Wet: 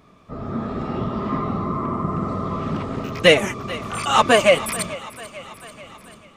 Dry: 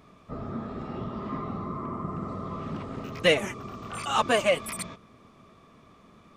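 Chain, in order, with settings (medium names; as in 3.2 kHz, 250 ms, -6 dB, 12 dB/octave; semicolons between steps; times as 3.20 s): on a send: thinning echo 440 ms, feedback 64%, high-pass 420 Hz, level -17 dB; on the sum: level rider gain up to 7.5 dB; trim +2 dB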